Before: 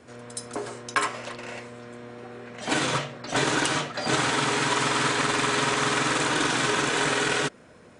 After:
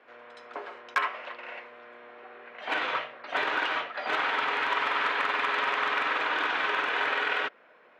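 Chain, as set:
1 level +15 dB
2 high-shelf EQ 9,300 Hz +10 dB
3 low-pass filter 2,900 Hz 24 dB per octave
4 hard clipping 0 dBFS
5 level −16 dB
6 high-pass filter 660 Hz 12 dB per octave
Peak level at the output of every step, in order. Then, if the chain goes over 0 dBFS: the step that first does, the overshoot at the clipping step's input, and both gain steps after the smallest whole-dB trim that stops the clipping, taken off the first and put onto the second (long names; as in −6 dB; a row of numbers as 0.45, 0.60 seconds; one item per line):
+5.5, +7.5, +5.5, 0.0, −16.0, −12.5 dBFS
step 1, 5.5 dB
step 1 +9 dB, step 5 −10 dB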